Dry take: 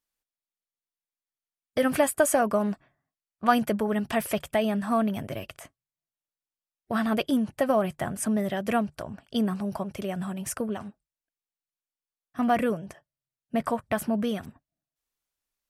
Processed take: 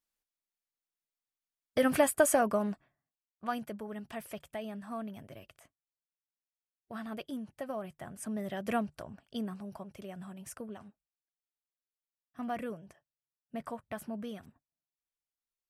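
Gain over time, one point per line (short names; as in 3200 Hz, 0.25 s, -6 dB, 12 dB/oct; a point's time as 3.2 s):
2.3 s -3 dB
3.68 s -15 dB
8.01 s -15 dB
8.74 s -6 dB
9.67 s -13 dB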